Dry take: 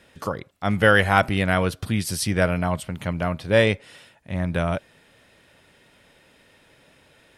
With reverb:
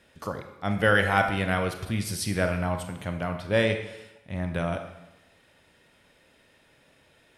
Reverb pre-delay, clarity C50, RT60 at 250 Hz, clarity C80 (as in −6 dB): 25 ms, 8.0 dB, 0.90 s, 10.5 dB